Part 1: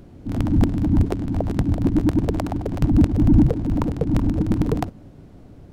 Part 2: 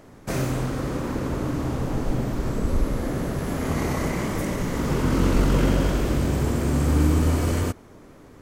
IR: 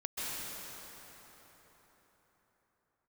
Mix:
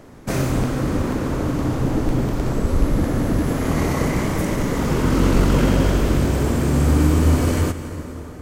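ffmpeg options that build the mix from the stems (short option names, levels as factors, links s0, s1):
-filter_complex "[0:a]volume=0.398[s0];[1:a]volume=1.33,asplit=2[s1][s2];[s2]volume=0.224[s3];[2:a]atrim=start_sample=2205[s4];[s3][s4]afir=irnorm=-1:irlink=0[s5];[s0][s1][s5]amix=inputs=3:normalize=0"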